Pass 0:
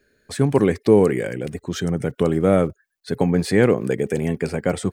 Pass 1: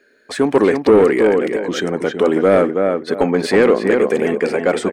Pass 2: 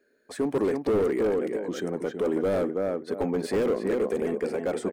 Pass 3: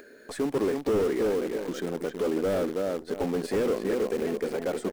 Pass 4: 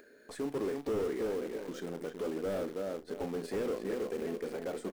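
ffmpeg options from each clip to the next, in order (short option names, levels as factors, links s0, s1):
-filter_complex "[0:a]lowshelf=f=180:t=q:w=1.5:g=-9,asplit=2[s0][s1];[s1]adelay=324,lowpass=f=2700:p=1,volume=0.501,asplit=2[s2][s3];[s3]adelay=324,lowpass=f=2700:p=1,volume=0.24,asplit=2[s4][s5];[s5]adelay=324,lowpass=f=2700:p=1,volume=0.24[s6];[s0][s2][s4][s6]amix=inputs=4:normalize=0,asplit=2[s7][s8];[s8]highpass=f=720:p=1,volume=7.08,asoftclip=type=tanh:threshold=0.841[s9];[s7][s9]amix=inputs=2:normalize=0,lowpass=f=2200:p=1,volume=0.501"
-af "lowshelf=f=380:g=-6,volume=4.73,asoftclip=hard,volume=0.211,equalizer=f=2700:w=0.32:g=-13,volume=0.631"
-filter_complex "[0:a]asplit=2[s0][s1];[s1]acrusher=bits=6:dc=4:mix=0:aa=0.000001,volume=0.631[s2];[s0][s2]amix=inputs=2:normalize=0,acompressor=mode=upward:threshold=0.0447:ratio=2.5,volume=0.531"
-filter_complex "[0:a]asplit=2[s0][s1];[s1]adelay=36,volume=0.266[s2];[s0][s2]amix=inputs=2:normalize=0,volume=0.376"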